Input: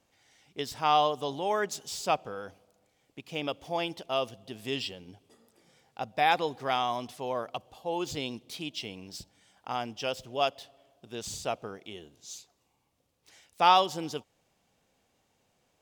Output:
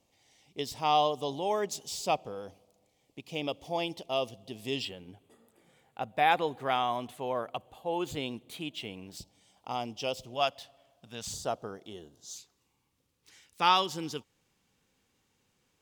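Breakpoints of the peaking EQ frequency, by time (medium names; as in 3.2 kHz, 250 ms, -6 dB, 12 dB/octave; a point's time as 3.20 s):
peaking EQ -13 dB 0.53 oct
1.5 kHz
from 4.85 s 5.3 kHz
from 9.17 s 1.6 kHz
from 10.34 s 370 Hz
from 11.33 s 2.4 kHz
from 12.36 s 660 Hz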